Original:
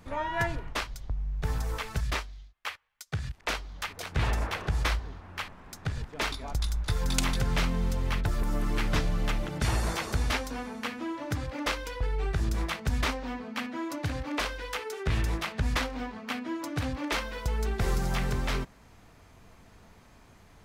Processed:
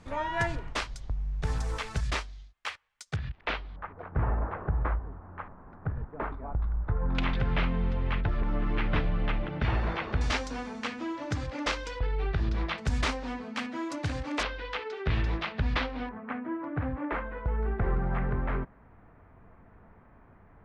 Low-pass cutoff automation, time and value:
low-pass 24 dB/octave
9.2 kHz
from 3.16 s 3.5 kHz
from 3.76 s 1.4 kHz
from 7.15 s 3.1 kHz
from 10.21 s 7.4 kHz
from 11.99 s 4.2 kHz
from 12.78 s 8.7 kHz
from 14.43 s 4.1 kHz
from 16.09 s 1.8 kHz

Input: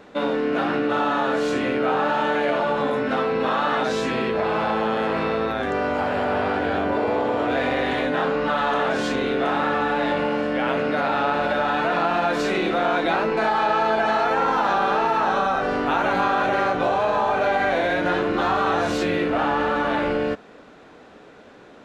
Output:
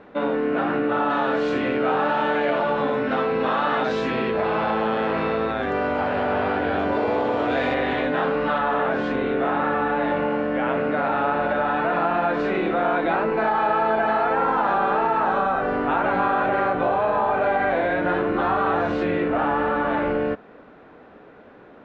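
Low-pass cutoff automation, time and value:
2.3 kHz
from 1.10 s 3.6 kHz
from 6.79 s 6.1 kHz
from 7.74 s 3.3 kHz
from 8.58 s 2.1 kHz

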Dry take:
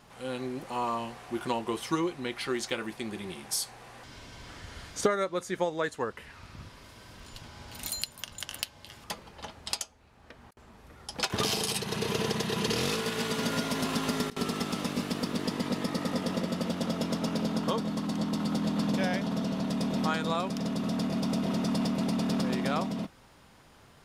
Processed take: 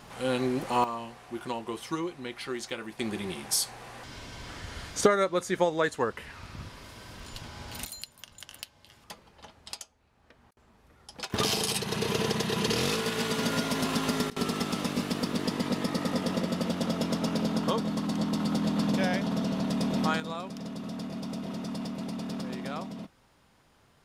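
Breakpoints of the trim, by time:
+7 dB
from 0.84 s -3.5 dB
from 2.99 s +4 dB
from 7.85 s -7.5 dB
from 11.34 s +1.5 dB
from 20.20 s -6.5 dB

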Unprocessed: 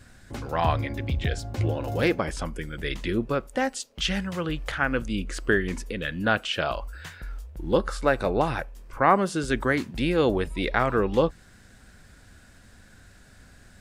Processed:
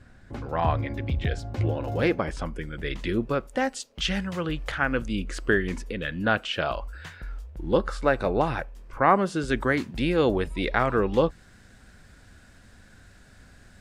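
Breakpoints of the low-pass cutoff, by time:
low-pass 6 dB/octave
1.7 kHz
from 0.86 s 3.1 kHz
from 2.99 s 7.6 kHz
from 5.78 s 4.4 kHz
from 9.49 s 7.6 kHz

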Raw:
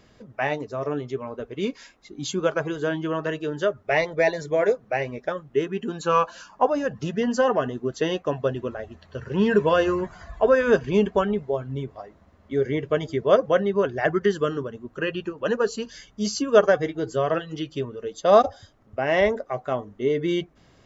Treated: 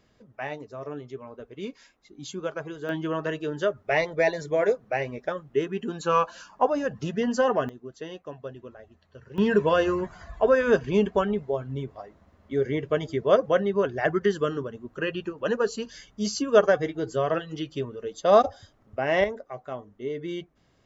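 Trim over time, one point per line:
-8.5 dB
from 2.89 s -2 dB
from 7.69 s -13.5 dB
from 9.38 s -2 dB
from 19.24 s -9 dB

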